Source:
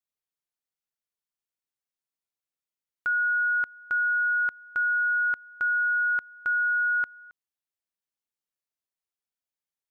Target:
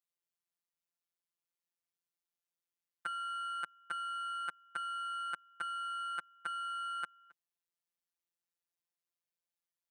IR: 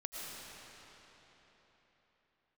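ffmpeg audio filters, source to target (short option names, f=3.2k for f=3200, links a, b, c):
-af "aeval=exprs='0.0891*(cos(1*acos(clip(val(0)/0.0891,-1,1)))-cos(1*PI/2))+0.00112*(cos(3*acos(clip(val(0)/0.0891,-1,1)))-cos(3*PI/2))+0.00501*(cos(4*acos(clip(val(0)/0.0891,-1,1)))-cos(4*PI/2))+0.00891*(cos(6*acos(clip(val(0)/0.0891,-1,1)))-cos(6*PI/2))':c=same,highpass=130,afftfilt=real='hypot(re,im)*cos(PI*b)':imag='0':win_size=1024:overlap=0.75"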